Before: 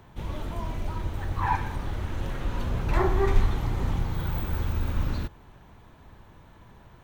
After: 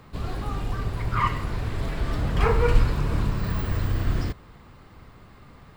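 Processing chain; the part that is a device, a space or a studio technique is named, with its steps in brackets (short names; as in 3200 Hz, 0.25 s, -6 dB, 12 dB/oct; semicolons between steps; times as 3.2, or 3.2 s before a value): nightcore (varispeed +22%); gain +2.5 dB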